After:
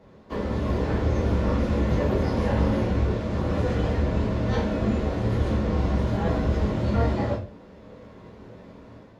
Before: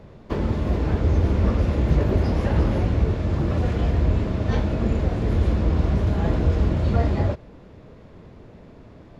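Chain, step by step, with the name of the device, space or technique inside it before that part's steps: far laptop microphone (reverb RT60 0.35 s, pre-delay 6 ms, DRR -4.5 dB; HPF 130 Hz 6 dB/oct; AGC gain up to 5.5 dB); gain -9 dB

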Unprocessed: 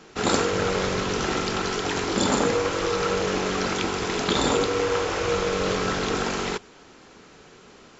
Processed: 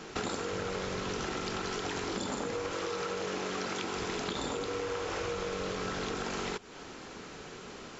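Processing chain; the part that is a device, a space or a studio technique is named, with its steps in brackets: 2.73–3.96 HPF 160 Hz 6 dB/oct; serial compression, leveller first (compressor 2:1, threshold -26 dBFS, peak gain reduction 6 dB; compressor 5:1, threshold -37 dBFS, peak gain reduction 14 dB); gain +3.5 dB

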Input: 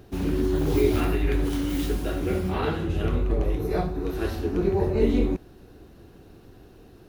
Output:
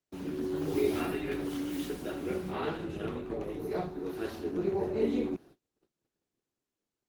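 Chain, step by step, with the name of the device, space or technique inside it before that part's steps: video call (HPF 170 Hz 12 dB/oct; AGC gain up to 3 dB; gate -43 dBFS, range -34 dB; gain -9 dB; Opus 16 kbps 48000 Hz)

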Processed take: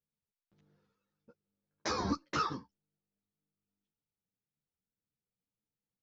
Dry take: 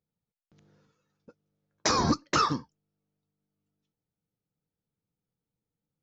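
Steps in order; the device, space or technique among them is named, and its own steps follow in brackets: string-machine ensemble chorus (ensemble effect; LPF 5300 Hz 12 dB/oct); gain -5.5 dB

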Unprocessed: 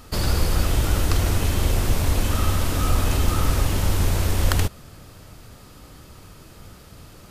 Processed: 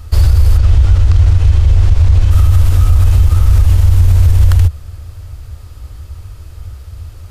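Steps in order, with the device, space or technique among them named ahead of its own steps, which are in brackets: car stereo with a boomy subwoofer (resonant low shelf 120 Hz +13 dB, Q 3; limiter -3 dBFS, peak gain reduction 10 dB); 0.58–2.31 LPF 6000 Hz 12 dB/oct; gain +1.5 dB

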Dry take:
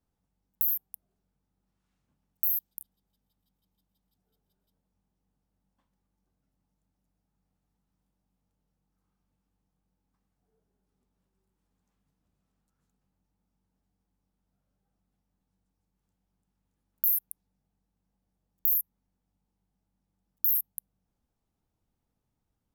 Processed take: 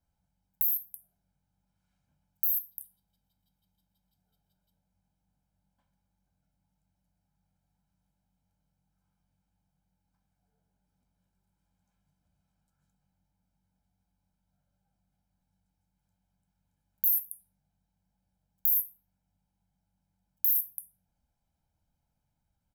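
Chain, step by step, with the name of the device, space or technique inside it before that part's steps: microphone above a desk (comb 1.3 ms, depth 69%; reverb RT60 0.45 s, pre-delay 4 ms, DRR 7 dB); gain -2.5 dB

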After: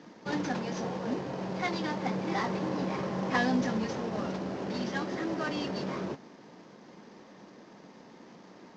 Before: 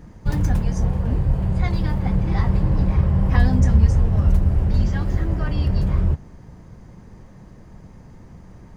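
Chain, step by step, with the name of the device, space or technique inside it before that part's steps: early wireless headset (HPF 240 Hz 24 dB/oct; CVSD 32 kbps)

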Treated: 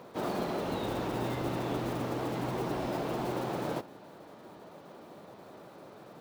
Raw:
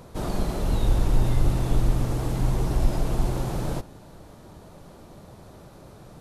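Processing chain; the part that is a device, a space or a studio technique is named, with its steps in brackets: early digital voice recorder (BPF 260–3600 Hz; block floating point 5-bit)

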